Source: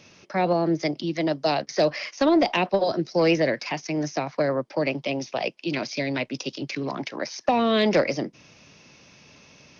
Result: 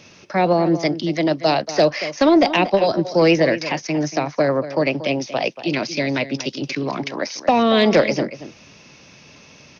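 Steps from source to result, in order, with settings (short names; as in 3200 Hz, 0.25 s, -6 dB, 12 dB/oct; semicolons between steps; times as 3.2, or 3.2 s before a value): outdoor echo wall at 40 m, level -13 dB; gain +5.5 dB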